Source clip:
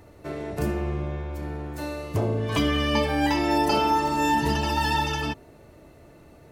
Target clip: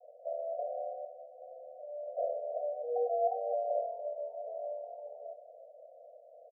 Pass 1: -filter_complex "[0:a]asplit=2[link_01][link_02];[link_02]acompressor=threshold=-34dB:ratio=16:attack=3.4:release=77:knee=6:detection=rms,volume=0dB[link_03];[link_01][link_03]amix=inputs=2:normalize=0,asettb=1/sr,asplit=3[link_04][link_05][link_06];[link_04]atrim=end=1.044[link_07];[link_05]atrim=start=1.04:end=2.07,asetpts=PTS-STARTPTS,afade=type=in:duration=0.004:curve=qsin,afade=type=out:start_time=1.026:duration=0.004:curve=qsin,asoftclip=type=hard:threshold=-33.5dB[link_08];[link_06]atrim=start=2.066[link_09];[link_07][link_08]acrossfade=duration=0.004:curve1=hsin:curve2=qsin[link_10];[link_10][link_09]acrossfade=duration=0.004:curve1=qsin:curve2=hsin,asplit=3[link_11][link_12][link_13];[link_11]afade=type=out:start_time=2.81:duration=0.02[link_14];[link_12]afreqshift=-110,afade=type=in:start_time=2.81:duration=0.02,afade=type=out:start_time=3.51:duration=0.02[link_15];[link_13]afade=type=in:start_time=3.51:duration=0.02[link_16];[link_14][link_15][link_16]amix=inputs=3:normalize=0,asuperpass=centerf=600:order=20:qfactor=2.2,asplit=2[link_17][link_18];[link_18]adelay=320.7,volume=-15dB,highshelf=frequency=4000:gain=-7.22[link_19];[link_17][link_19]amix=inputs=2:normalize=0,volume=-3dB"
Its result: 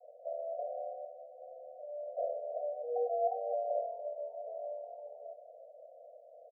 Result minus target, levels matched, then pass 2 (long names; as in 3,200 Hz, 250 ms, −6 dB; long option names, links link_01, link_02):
downward compressor: peak gain reduction +7.5 dB
-filter_complex "[0:a]asplit=2[link_01][link_02];[link_02]acompressor=threshold=-26dB:ratio=16:attack=3.4:release=77:knee=6:detection=rms,volume=0dB[link_03];[link_01][link_03]amix=inputs=2:normalize=0,asettb=1/sr,asplit=3[link_04][link_05][link_06];[link_04]atrim=end=1.044[link_07];[link_05]atrim=start=1.04:end=2.07,asetpts=PTS-STARTPTS,afade=type=in:duration=0.004:curve=qsin,afade=type=out:start_time=1.026:duration=0.004:curve=qsin,asoftclip=type=hard:threshold=-33.5dB[link_08];[link_06]atrim=start=2.066[link_09];[link_07][link_08]acrossfade=duration=0.004:curve1=hsin:curve2=qsin[link_10];[link_10][link_09]acrossfade=duration=0.004:curve1=qsin:curve2=hsin,asplit=3[link_11][link_12][link_13];[link_11]afade=type=out:start_time=2.81:duration=0.02[link_14];[link_12]afreqshift=-110,afade=type=in:start_time=2.81:duration=0.02,afade=type=out:start_time=3.51:duration=0.02[link_15];[link_13]afade=type=in:start_time=3.51:duration=0.02[link_16];[link_14][link_15][link_16]amix=inputs=3:normalize=0,asuperpass=centerf=600:order=20:qfactor=2.2,asplit=2[link_17][link_18];[link_18]adelay=320.7,volume=-15dB,highshelf=frequency=4000:gain=-7.22[link_19];[link_17][link_19]amix=inputs=2:normalize=0,volume=-3dB"